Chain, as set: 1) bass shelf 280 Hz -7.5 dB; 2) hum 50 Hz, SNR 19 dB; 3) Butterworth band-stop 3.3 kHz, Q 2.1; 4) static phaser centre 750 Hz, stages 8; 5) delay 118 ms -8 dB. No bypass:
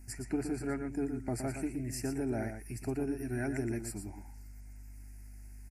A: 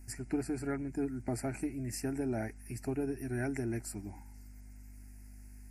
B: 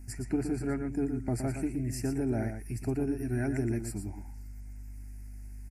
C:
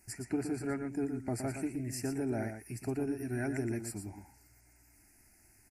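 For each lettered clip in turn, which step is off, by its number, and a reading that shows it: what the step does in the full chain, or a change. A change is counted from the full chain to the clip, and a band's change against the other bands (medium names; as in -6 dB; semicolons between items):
5, momentary loudness spread change +1 LU; 1, 125 Hz band +5.5 dB; 2, momentary loudness spread change -11 LU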